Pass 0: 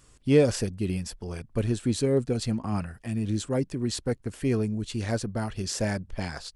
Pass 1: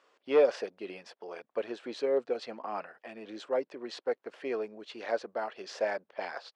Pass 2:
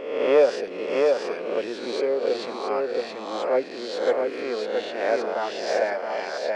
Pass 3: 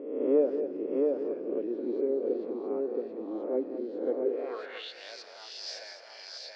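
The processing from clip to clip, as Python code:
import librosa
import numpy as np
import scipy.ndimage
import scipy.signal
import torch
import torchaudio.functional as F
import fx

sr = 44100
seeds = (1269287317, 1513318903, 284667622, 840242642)

y1 = np.clip(x, -10.0 ** (-13.5 / 20.0), 10.0 ** (-13.5 / 20.0))
y1 = fx.ladder_highpass(y1, sr, hz=430.0, resonance_pct=30)
y1 = fx.air_absorb(y1, sr, metres=250.0)
y1 = y1 * librosa.db_to_amplitude(6.5)
y2 = fx.spec_swells(y1, sr, rise_s=1.02)
y2 = y2 + 10.0 ** (-3.5 / 20.0) * np.pad(y2, (int(675 * sr / 1000.0), 0))[:len(y2)]
y2 = fx.am_noise(y2, sr, seeds[0], hz=5.7, depth_pct=50)
y2 = y2 * librosa.db_to_amplitude(7.0)
y3 = fx.peak_eq(y2, sr, hz=360.0, db=4.0, octaves=1.2)
y3 = fx.filter_sweep_bandpass(y3, sr, from_hz=290.0, to_hz=4800.0, start_s=4.21, end_s=4.94, q=3.1)
y3 = y3 + 10.0 ** (-10.0 / 20.0) * np.pad(y3, (int(212 * sr / 1000.0), 0))[:len(y3)]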